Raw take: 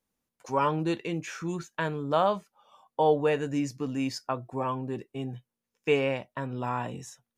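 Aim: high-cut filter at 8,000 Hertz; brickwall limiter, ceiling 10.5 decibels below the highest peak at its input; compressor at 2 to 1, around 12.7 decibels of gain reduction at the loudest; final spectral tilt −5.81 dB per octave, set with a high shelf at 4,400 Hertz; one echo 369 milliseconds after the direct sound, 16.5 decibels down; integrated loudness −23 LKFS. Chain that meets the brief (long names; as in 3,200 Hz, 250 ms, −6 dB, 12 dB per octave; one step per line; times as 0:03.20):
low-pass filter 8,000 Hz
high-shelf EQ 4,400 Hz −3.5 dB
downward compressor 2 to 1, threshold −43 dBFS
brickwall limiter −33.5 dBFS
single-tap delay 369 ms −16.5 dB
level +20.5 dB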